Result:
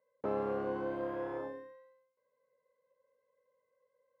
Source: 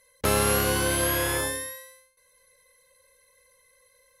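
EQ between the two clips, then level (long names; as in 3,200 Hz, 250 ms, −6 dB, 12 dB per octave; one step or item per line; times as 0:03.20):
flat-topped band-pass 440 Hz, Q 0.59
−8.0 dB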